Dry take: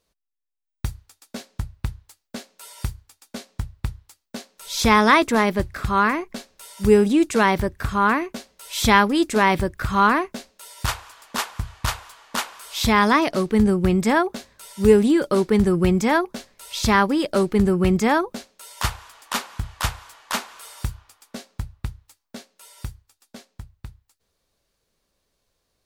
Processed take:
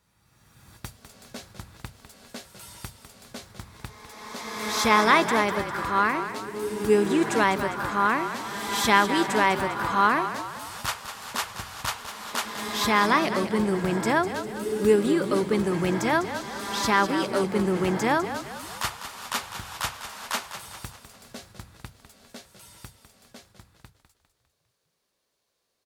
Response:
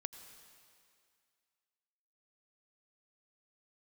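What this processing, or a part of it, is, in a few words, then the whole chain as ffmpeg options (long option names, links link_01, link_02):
ghost voice: -filter_complex "[0:a]asplit=6[link_01][link_02][link_03][link_04][link_05][link_06];[link_02]adelay=201,afreqshift=-42,volume=-10dB[link_07];[link_03]adelay=402,afreqshift=-84,volume=-16dB[link_08];[link_04]adelay=603,afreqshift=-126,volume=-22dB[link_09];[link_05]adelay=804,afreqshift=-168,volume=-28.1dB[link_10];[link_06]adelay=1005,afreqshift=-210,volume=-34.1dB[link_11];[link_01][link_07][link_08][link_09][link_10][link_11]amix=inputs=6:normalize=0,areverse[link_12];[1:a]atrim=start_sample=2205[link_13];[link_12][link_13]afir=irnorm=-1:irlink=0,areverse,highpass=frequency=320:poles=1"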